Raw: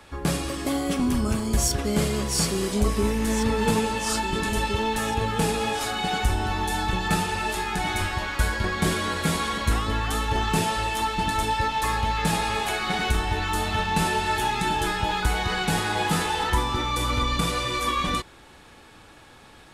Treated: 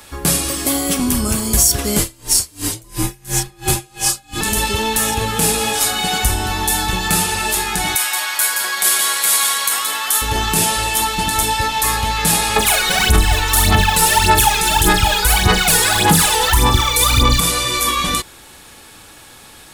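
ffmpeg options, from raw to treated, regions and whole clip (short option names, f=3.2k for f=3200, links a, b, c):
-filter_complex "[0:a]asettb=1/sr,asplit=3[a][b][c];[a]atrim=end=1.994[d];[b]atrim=start=1.99:end=4.41,asetpts=PTS-STARTPTS,afade=t=in:d=0.004:c=qsin,afade=t=out:st=2.416:d=0.004:c=qsin,afreqshift=-91,aeval=exprs='val(0)*pow(10,-30*(0.5-0.5*cos(2*PI*2.9*n/s))/20)':c=same[e];[c]atrim=start=4.406[f];[d][e]acrossfade=d=0.004:c1=hsin:c2=qsin[g];[g][f]acrossfade=d=0.004:c1=qsin:c2=hsin,asettb=1/sr,asplit=3[h][i][j];[h]atrim=end=7.954[k];[i]atrim=start=7.95:end=10.22,asetpts=PTS-STARTPTS,afade=t=in:d=0.004:c=qsin,afade=t=out:st=2.266:d=0.004:c=qsin,highpass=800,highshelf=f=11k:g=7,aecho=1:1:173:0.422,atrim=end_sample=100107[l];[j]atrim=start=10.216[m];[k][l]acrossfade=d=0.004:c1=hsin:c2=qsin[n];[n][m]acrossfade=d=0.004:c1=qsin:c2=hsin,asettb=1/sr,asplit=3[o][p][q];[o]atrim=end=12.564[r];[p]atrim=start=12.56:end=17.4,asetpts=PTS-STARTPTS,afade=t=in:d=0.004:c=qsin,afade=t=out:st=4.836:d=0.004:c=qsin,aphaser=in_gain=1:out_gain=1:delay=2.2:decay=0.74:speed=1.7:type=sinusoidal,asplit=2[s][t];[t]adelay=42,volume=-12dB[u];[s][u]amix=inputs=2:normalize=0,atrim=end_sample=213444[v];[q]atrim=start=17.396[w];[r][v]acrossfade=d=0.004:c1=hsin:c2=qsin[x];[x][w]acrossfade=d=0.004:c1=qsin:c2=hsin,aemphasis=mode=production:type=75fm,alimiter=level_in=6.5dB:limit=-1dB:release=50:level=0:latency=1,volume=-1dB"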